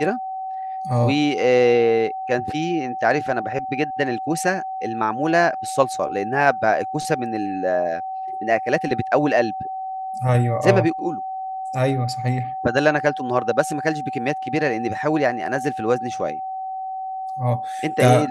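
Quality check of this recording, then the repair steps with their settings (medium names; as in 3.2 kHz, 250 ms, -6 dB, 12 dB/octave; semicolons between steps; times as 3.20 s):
whine 760 Hz -26 dBFS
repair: band-stop 760 Hz, Q 30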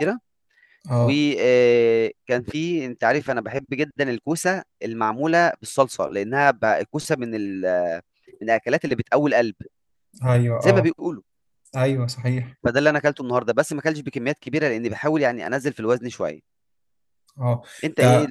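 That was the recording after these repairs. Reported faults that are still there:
nothing left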